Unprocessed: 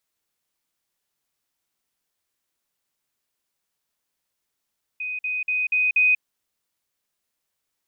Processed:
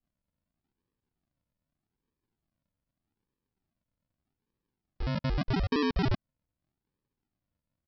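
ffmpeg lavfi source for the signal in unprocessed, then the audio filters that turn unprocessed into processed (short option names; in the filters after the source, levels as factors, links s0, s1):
-f lavfi -i "aevalsrc='pow(10,(-26.5+3*floor(t/0.24))/20)*sin(2*PI*2500*t)*clip(min(mod(t,0.24),0.19-mod(t,0.24))/0.005,0,1)':d=1.2:s=44100"
-af "acompressor=threshold=0.0501:ratio=6,aresample=11025,acrusher=samples=22:mix=1:aa=0.000001:lfo=1:lforange=13.2:lforate=0.82,aresample=44100"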